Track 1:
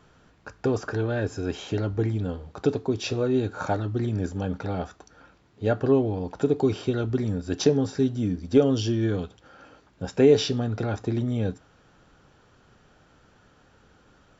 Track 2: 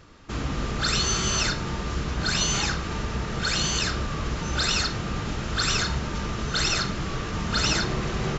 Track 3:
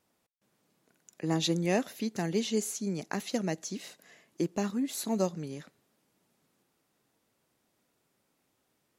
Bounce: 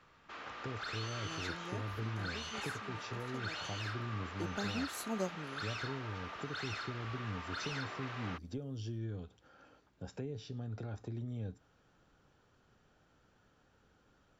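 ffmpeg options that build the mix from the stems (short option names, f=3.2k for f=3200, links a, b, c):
-filter_complex "[0:a]acrossover=split=150[a][b];[b]acompressor=threshold=-33dB:ratio=6[c];[a][c]amix=inputs=2:normalize=0,volume=-11.5dB[d];[1:a]highpass=770,asoftclip=type=tanh:threshold=-26.5dB,lowpass=2.9k,volume=-8dB[e];[2:a]volume=-8dB,afade=t=in:st=4.04:d=0.69:silence=0.266073[f];[d][e][f]amix=inputs=3:normalize=0"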